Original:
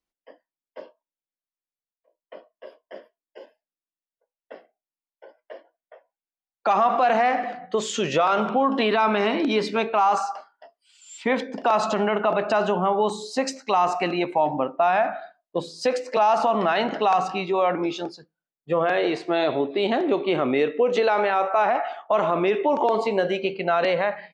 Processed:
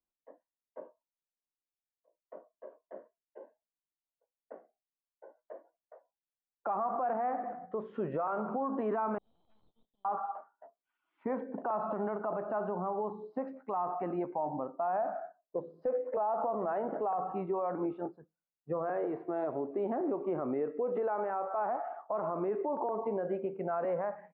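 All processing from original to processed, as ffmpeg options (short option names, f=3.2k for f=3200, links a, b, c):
-filter_complex "[0:a]asettb=1/sr,asplit=3[a][b][c];[a]atrim=end=9.184[d];[b]atrim=start=9.18:end=10.05,asetpts=PTS-STARTPTS,afade=t=in:d=0.004:c=qsin,afade=t=out:st=0.866:d=0.004:c=qsin,asuperpass=centerf=3700:order=20:qfactor=2.8,aeval=exprs='(tanh(126*val(0)+0.25)-tanh(0.25))/126':c=same[e];[c]atrim=start=10.046[f];[d][e]acrossfade=d=0.004:c1=hsin:c2=qsin[g];[g][f]acrossfade=d=0.004:c1=qsin:c2=hsin,asettb=1/sr,asplit=3[h][i][j];[h]atrim=end=14.874[k];[i]atrim=start=14.87:end=17.33,asetpts=PTS-STARTPTS,afade=t=in:d=0.004:c=qsin,afade=t=out:st=2.456:d=0.004:c=qsin,equalizer=f=500:t=o:w=1:g=7.5,asoftclip=type=hard:threshold=-8.5dB[l];[j]atrim=start=17.326[m];[k][l]acrossfade=d=0.004:c1=hsin:c2=qsin[n];[n][m]acrossfade=d=0.004:c1=qsin:c2=hsin,lowpass=f=1.3k:w=0.5412,lowpass=f=1.3k:w=1.3066,alimiter=limit=-18.5dB:level=0:latency=1:release=201,volume=-6.5dB"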